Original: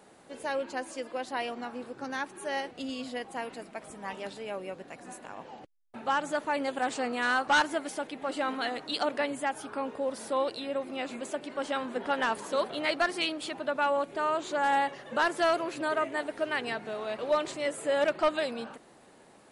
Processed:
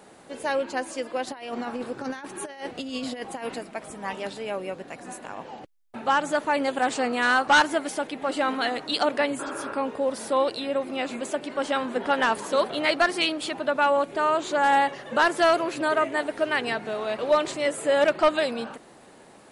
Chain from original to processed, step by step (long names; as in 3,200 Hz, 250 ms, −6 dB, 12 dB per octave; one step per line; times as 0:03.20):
0:01.27–0:03.59: compressor whose output falls as the input rises −38 dBFS, ratio −0.5
0:09.42–0:09.70: healed spectral selection 290–3,200 Hz after
level +6 dB